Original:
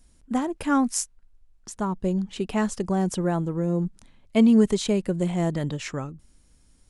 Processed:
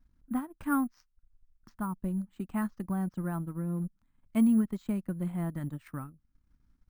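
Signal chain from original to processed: FFT filter 290 Hz 0 dB, 420 Hz -14 dB, 1.3 kHz +2 dB, 2.9 kHz -10 dB; transient shaper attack +2 dB, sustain -11 dB; careless resampling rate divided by 4×, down filtered, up hold; trim -7 dB

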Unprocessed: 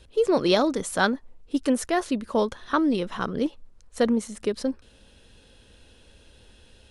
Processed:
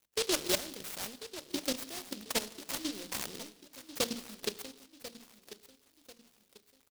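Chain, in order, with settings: in parallel at -6 dB: saturation -18 dBFS, distortion -14 dB; on the sum: high-pass 64 Hz 24 dB/octave; compression 2:1, threshold -36 dBFS, peak gain reduction 12 dB; band-stop 1.3 kHz, Q 6.2; level held to a coarse grid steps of 14 dB; dynamic bell 1.2 kHz, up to +7 dB, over -53 dBFS, Q 1.2; crossover distortion -50.5 dBFS; bass shelf 430 Hz -8.5 dB; hum notches 60/120/180/240/300 Hz; feedback delay 1042 ms, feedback 36%, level -14 dB; on a send at -14.5 dB: reverberation, pre-delay 5 ms; on the sum: delay time shaken by noise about 4 kHz, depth 0.29 ms; trim +3.5 dB

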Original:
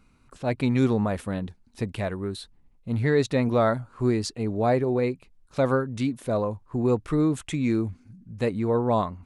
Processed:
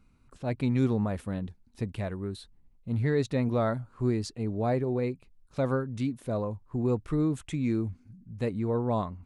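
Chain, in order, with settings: bass shelf 270 Hz +6.5 dB; trim -7.5 dB

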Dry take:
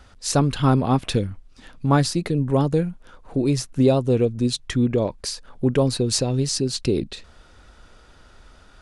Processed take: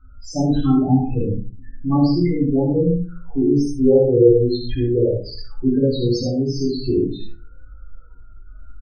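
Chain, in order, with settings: 1.08–1.85 s: low-pass 1.7 kHz 12 dB/octave; 3.60–5.06 s: comb 2.4 ms, depth 65%; loudest bins only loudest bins 8; on a send: early reflections 59 ms -7.5 dB, 76 ms -5 dB; on the sum: simulated room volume 170 m³, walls furnished, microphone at 3.2 m; trim -6 dB

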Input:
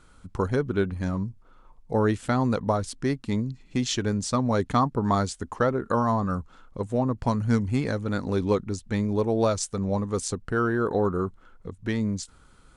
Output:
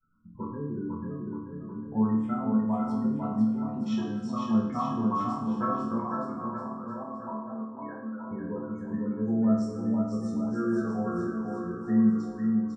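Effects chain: gate with hold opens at -49 dBFS; spectral gate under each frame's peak -15 dB strong; low-pass 5 kHz 12 dB/octave; band-stop 1.2 kHz, Q 16; 5.99–8.31 s: high-pass 500 Hz 12 dB/octave; chord resonator D2 minor, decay 0.82 s; bouncing-ball echo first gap 500 ms, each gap 0.85×, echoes 5; reverberation RT60 0.40 s, pre-delay 3 ms, DRR 1.5 dB

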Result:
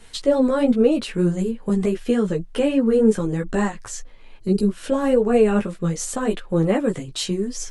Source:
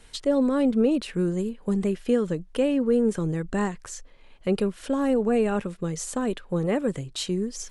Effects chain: time-frequency box 4.38–4.68 s, 450–3800 Hz -16 dB; chorus voices 4, 0.83 Hz, delay 14 ms, depth 4.9 ms; trim +8 dB

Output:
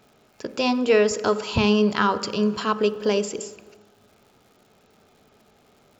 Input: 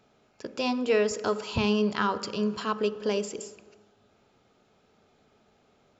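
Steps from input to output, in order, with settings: crackle 220 per s -54 dBFS; trim +6 dB

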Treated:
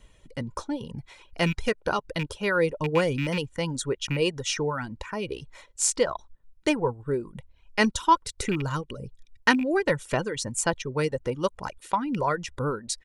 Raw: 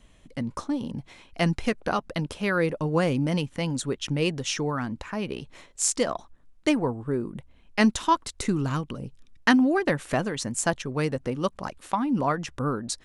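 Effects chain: rattle on loud lows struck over -26 dBFS, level -21 dBFS; comb 2.1 ms, depth 43%; reverb removal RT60 0.61 s

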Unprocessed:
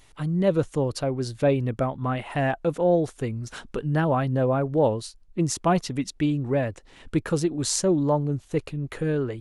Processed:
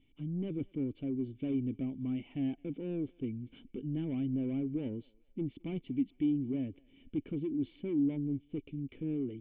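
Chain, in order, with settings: dynamic bell 380 Hz, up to +6 dB, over -39 dBFS, Q 3.2; saturation -21.5 dBFS, distortion -9 dB; cascade formant filter i; on a send: thinning echo 215 ms, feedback 52%, high-pass 710 Hz, level -23.5 dB

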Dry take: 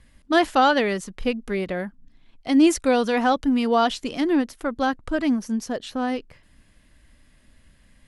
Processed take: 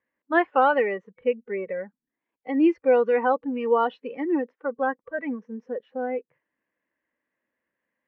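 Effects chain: distance through air 92 m; spectral noise reduction 16 dB; cabinet simulation 330–2500 Hz, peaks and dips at 340 Hz +5 dB, 490 Hz +8 dB, 980 Hz +6 dB, 1.8 kHz +6 dB; trim -4 dB

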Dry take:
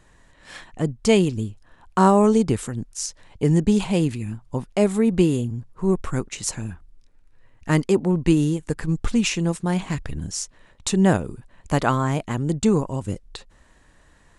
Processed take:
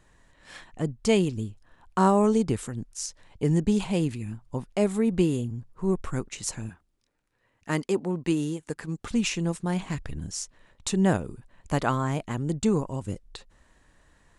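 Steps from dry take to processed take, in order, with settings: 6.69–9.11 s: high-pass 250 Hz 6 dB/octave; trim -5 dB

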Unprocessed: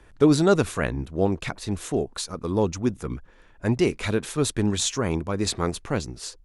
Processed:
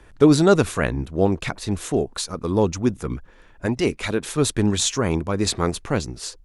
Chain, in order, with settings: 3.66–4.26 s: harmonic-percussive split harmonic -8 dB; trim +3.5 dB

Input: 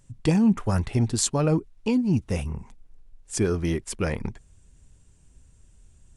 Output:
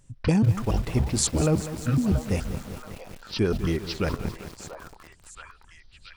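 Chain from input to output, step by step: pitch shift switched off and on -10.5 st, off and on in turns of 141 ms; repeats whose band climbs or falls 680 ms, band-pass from 810 Hz, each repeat 0.7 oct, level -6 dB; bit-crushed delay 197 ms, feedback 80%, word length 6-bit, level -12 dB

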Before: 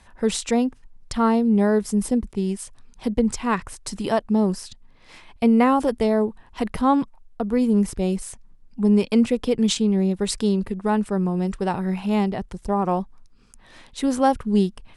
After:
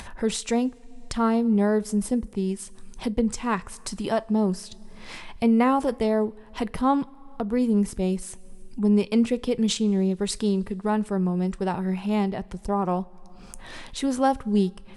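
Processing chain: two-slope reverb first 0.21 s, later 1.7 s, from -18 dB, DRR 15.5 dB; upward compressor, threshold -25 dBFS; trim -3 dB

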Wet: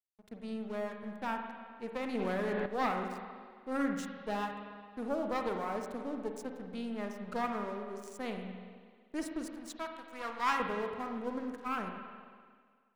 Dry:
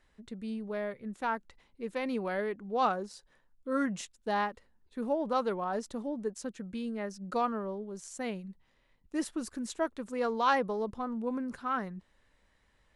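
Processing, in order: single-diode clipper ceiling -33.5 dBFS; 9.50–10.60 s: resonant low shelf 780 Hz -7.5 dB, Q 1.5; crossover distortion -49 dBFS; reverberation RT60 1.8 s, pre-delay 43 ms, DRR 3.5 dB; 2.15–2.66 s: level flattener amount 100%; trim -1 dB

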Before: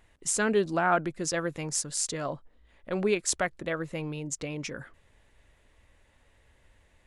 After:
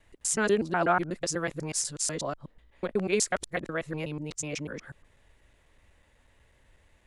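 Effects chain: time reversed locally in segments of 123 ms

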